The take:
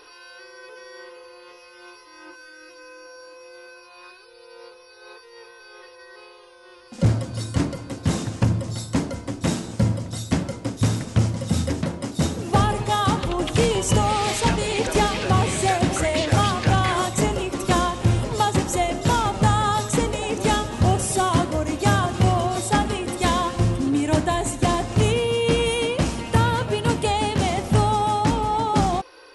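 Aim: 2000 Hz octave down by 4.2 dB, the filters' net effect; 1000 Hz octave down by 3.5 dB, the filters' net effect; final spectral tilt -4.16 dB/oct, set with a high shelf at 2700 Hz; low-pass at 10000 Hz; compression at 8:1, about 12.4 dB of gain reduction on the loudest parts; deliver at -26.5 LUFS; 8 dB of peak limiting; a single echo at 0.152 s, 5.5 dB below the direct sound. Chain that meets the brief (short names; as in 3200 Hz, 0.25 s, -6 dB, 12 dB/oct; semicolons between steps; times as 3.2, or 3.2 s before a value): LPF 10000 Hz; bell 1000 Hz -4 dB; bell 2000 Hz -8.5 dB; high shelf 2700 Hz +9 dB; compressor 8:1, threshold -27 dBFS; limiter -23.5 dBFS; echo 0.152 s -5.5 dB; gain +5.5 dB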